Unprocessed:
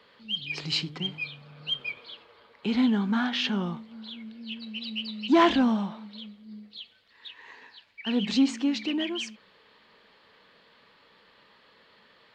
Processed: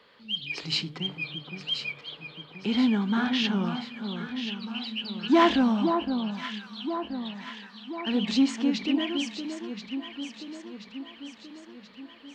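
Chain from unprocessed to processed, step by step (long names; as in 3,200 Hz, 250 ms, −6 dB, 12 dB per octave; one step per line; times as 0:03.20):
mains-hum notches 50/100/150 Hz
on a send: delay that swaps between a low-pass and a high-pass 515 ms, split 1,300 Hz, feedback 73%, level −6 dB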